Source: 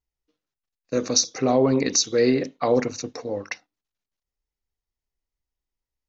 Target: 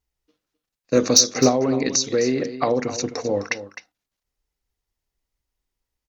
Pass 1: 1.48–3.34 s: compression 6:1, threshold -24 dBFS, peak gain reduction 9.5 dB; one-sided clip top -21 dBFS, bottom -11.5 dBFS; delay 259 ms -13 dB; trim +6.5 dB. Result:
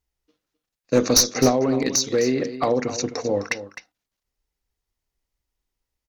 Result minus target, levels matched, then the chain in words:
one-sided clip: distortion +10 dB
1.48–3.34 s: compression 6:1, threshold -24 dBFS, peak gain reduction 9.5 dB; one-sided clip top -11 dBFS, bottom -11.5 dBFS; delay 259 ms -13 dB; trim +6.5 dB

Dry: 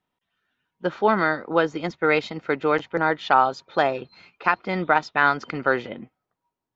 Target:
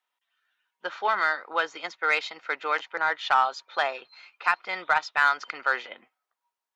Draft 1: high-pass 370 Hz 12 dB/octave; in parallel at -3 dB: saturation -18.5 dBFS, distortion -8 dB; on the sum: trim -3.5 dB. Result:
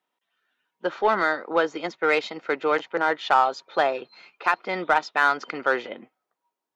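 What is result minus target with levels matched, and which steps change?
500 Hz band +7.5 dB
change: high-pass 1 kHz 12 dB/octave

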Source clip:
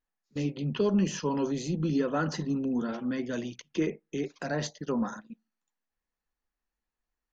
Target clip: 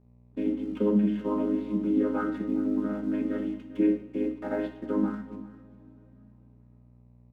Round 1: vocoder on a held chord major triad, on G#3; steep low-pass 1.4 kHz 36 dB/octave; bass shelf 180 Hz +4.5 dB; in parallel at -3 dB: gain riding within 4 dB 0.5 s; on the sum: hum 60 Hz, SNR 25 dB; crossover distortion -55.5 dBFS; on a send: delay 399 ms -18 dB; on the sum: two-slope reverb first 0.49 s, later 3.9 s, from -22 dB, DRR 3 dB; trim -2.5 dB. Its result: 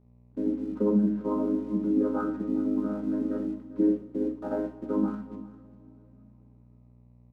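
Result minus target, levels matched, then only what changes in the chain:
4 kHz band -9.5 dB
change: steep low-pass 3.4 kHz 36 dB/octave

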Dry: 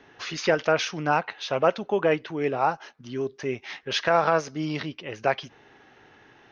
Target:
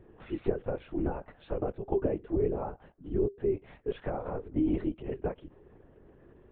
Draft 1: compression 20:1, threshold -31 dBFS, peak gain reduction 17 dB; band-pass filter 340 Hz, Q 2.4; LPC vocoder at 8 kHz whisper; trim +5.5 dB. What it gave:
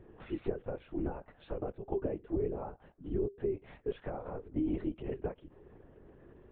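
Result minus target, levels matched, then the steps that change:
compression: peak gain reduction +5.5 dB
change: compression 20:1, threshold -25 dBFS, peak gain reduction 11.5 dB

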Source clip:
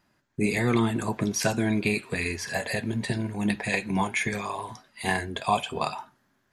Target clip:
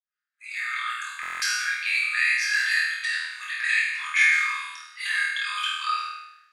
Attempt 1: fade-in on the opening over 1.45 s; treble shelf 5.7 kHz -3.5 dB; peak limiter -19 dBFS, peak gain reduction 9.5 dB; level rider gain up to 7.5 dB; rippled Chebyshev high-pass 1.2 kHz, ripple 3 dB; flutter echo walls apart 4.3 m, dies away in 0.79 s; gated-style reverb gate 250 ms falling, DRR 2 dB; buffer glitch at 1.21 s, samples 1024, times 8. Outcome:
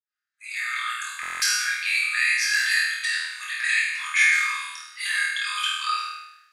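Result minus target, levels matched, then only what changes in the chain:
8 kHz band +5.0 dB
change: treble shelf 5.7 kHz -14 dB

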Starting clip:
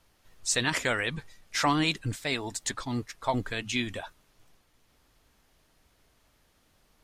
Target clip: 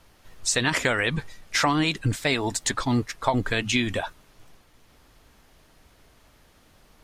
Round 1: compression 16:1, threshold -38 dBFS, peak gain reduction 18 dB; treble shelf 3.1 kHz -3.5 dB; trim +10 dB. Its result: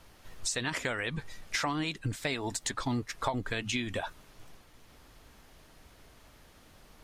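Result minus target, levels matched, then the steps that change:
compression: peak gain reduction +10 dB
change: compression 16:1, threshold -27.5 dBFS, peak gain reduction 8 dB

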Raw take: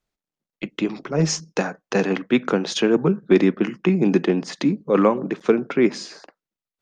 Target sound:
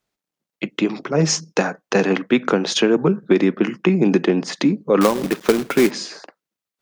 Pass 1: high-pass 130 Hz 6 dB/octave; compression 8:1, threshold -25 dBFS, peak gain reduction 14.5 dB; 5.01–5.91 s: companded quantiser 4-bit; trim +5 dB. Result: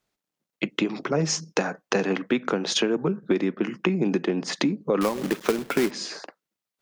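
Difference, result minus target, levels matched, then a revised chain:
compression: peak gain reduction +8.5 dB
high-pass 130 Hz 6 dB/octave; compression 8:1, threshold -15.5 dBFS, peak gain reduction 6.5 dB; 5.01–5.91 s: companded quantiser 4-bit; trim +5 dB

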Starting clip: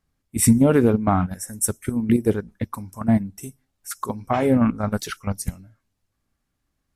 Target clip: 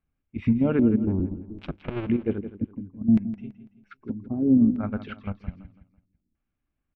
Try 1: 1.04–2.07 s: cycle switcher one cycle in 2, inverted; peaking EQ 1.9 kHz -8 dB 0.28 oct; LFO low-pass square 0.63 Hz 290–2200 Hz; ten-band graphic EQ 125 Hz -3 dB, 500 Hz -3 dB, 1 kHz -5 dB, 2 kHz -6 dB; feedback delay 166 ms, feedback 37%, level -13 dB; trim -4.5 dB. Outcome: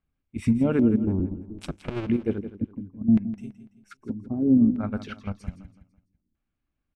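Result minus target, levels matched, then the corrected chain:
4 kHz band +3.0 dB
1.04–2.07 s: cycle switcher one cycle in 2, inverted; low-pass 3.3 kHz 24 dB/octave; peaking EQ 1.9 kHz -8 dB 0.28 oct; LFO low-pass square 0.63 Hz 290–2200 Hz; ten-band graphic EQ 125 Hz -3 dB, 500 Hz -3 dB, 1 kHz -5 dB, 2 kHz -6 dB; feedback delay 166 ms, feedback 37%, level -13 dB; trim -4.5 dB

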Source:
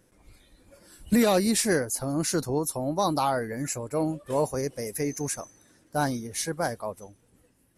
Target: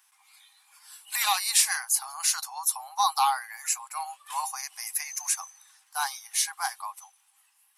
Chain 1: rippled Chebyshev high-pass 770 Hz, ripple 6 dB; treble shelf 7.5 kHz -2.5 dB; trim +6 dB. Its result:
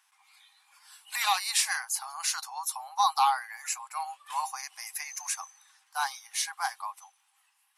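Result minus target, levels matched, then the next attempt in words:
8 kHz band -2.5 dB
rippled Chebyshev high-pass 770 Hz, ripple 6 dB; treble shelf 7.5 kHz +8.5 dB; trim +6 dB

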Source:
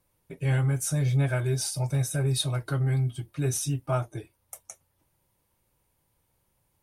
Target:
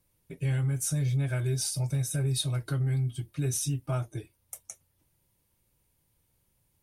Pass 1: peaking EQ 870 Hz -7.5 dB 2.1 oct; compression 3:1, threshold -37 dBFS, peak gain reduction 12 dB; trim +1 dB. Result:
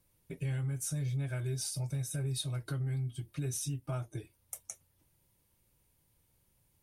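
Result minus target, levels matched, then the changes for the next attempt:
compression: peak gain reduction +6.5 dB
change: compression 3:1, threshold -27 dBFS, peak gain reduction 5 dB

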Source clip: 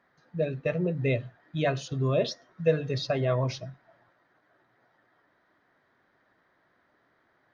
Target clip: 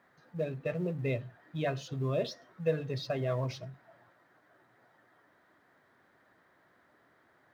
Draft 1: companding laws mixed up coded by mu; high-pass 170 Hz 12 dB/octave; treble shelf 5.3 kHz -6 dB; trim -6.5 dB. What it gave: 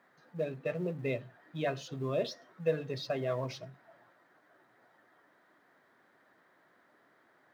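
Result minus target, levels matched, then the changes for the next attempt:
125 Hz band -4.0 dB
change: high-pass 52 Hz 12 dB/octave

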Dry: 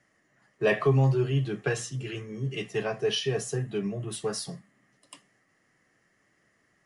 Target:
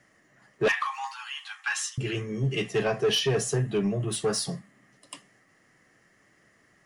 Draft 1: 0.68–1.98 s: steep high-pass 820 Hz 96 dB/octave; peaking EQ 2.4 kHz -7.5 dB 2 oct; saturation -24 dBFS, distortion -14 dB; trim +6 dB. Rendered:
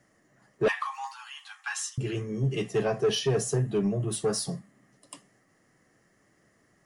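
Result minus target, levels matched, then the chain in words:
2 kHz band -4.0 dB
0.68–1.98 s: steep high-pass 820 Hz 96 dB/octave; saturation -24 dBFS, distortion -13 dB; trim +6 dB

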